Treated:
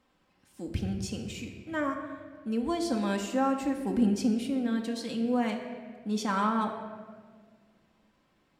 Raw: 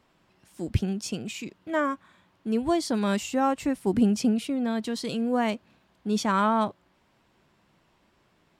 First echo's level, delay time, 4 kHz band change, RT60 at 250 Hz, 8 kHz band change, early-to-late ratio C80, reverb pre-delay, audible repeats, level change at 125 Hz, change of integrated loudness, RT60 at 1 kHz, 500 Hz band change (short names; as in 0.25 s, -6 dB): none, none, -4.5 dB, 2.2 s, -5.0 dB, 8.0 dB, 4 ms, none, -4.5 dB, -3.5 dB, 1.5 s, -4.5 dB